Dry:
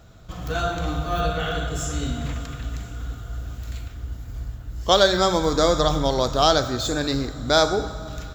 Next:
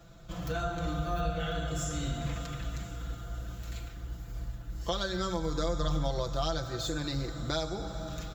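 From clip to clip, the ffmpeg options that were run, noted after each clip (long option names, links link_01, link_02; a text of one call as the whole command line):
ffmpeg -i in.wav -filter_complex "[0:a]aecho=1:1:5.9:0.86,acrossover=split=130[link_01][link_02];[link_02]acompressor=threshold=-28dB:ratio=3[link_03];[link_01][link_03]amix=inputs=2:normalize=0,volume=-6dB" out.wav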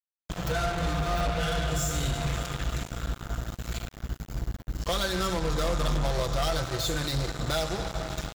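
ffmpeg -i in.wav -af "equalizer=frequency=270:width_type=o:width=0.57:gain=-8,asoftclip=type=tanh:threshold=-31dB,acrusher=bits=5:mix=0:aa=0.5,volume=7dB" out.wav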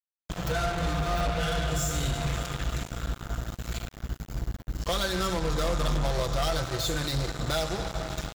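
ffmpeg -i in.wav -af anull out.wav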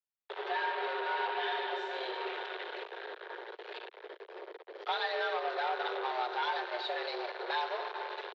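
ffmpeg -i in.wav -af "highpass=frequency=170:width_type=q:width=0.5412,highpass=frequency=170:width_type=q:width=1.307,lowpass=frequency=3600:width_type=q:width=0.5176,lowpass=frequency=3600:width_type=q:width=0.7071,lowpass=frequency=3600:width_type=q:width=1.932,afreqshift=240,volume=-3.5dB" out.wav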